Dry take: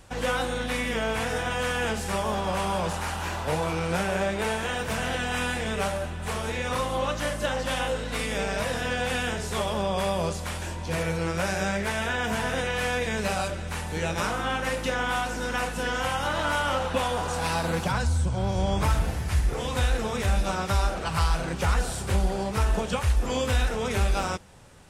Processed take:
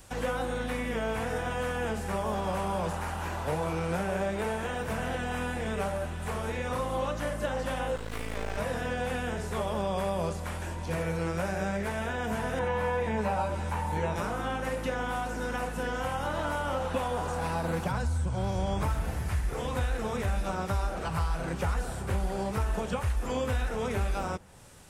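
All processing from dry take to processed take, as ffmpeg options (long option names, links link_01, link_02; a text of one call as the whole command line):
ffmpeg -i in.wav -filter_complex "[0:a]asettb=1/sr,asplit=3[link_01][link_02][link_03];[link_01]atrim=end=7.964[link_04];[link_02]atrim=start=7.96:end=8.58,asetpts=PTS-STARTPTS,afade=type=in:duration=0.004:curve=qsin,afade=type=out:start_time=0.616:duration=0.004:curve=qsin,asubboost=boost=11.5:cutoff=70,aeval=exprs='max(val(0),0)':channel_layout=same[link_05];[link_03]atrim=start=8.576[link_06];[link_04][link_05]acrossfade=duration=0.004:curve1=hsin:curve2=qsin[link_07];[link_07][link_06]acrossfade=duration=0.004:curve1=qsin:curve2=hsin,asettb=1/sr,asplit=3[link_08][link_09][link_10];[link_08]atrim=end=12.594[link_11];[link_09]atrim=start=12.59:end=14.16,asetpts=PTS-STARTPTS,afade=type=in:duration=0.004:curve=qsin,afade=type=out:start_time=1.566:duration=0.004:curve=qsin,acrossover=split=2700[link_12][link_13];[link_13]acompressor=threshold=-48dB:ratio=4:attack=1:release=60[link_14];[link_12][link_14]amix=inputs=2:normalize=0,equalizer=frequency=920:width=6:gain=14,asplit=2[link_15][link_16];[link_16]adelay=14,volume=-3dB[link_17];[link_15][link_17]amix=inputs=2:normalize=0,atrim=end_sample=69237[link_18];[link_10]atrim=start=14.156[link_19];[link_11][link_18]acrossfade=duration=0.004:curve1=hsin:curve2=qsin[link_20];[link_20][link_19]acrossfade=duration=0.004:curve1=qsin:curve2=hsin,highshelf=frequency=7200:gain=11,acrossover=split=920|2300[link_21][link_22][link_23];[link_21]acompressor=threshold=-24dB:ratio=4[link_24];[link_22]acompressor=threshold=-37dB:ratio=4[link_25];[link_23]acompressor=threshold=-48dB:ratio=4[link_26];[link_24][link_25][link_26]amix=inputs=3:normalize=0,volume=-2dB" out.wav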